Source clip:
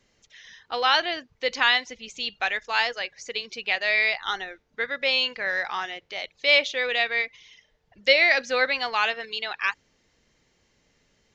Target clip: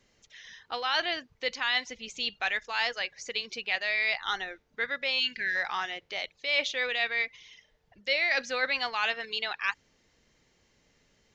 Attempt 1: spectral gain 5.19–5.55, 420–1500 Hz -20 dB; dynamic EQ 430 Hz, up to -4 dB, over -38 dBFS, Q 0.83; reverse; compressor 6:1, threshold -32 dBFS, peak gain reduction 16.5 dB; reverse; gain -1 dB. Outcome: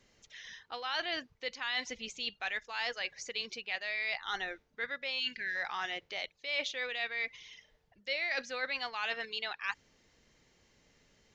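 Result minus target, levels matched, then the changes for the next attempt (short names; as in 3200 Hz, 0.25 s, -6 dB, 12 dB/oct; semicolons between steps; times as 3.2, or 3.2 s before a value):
compressor: peak gain reduction +7.5 dB
change: compressor 6:1, threshold -23 dBFS, peak gain reduction 9 dB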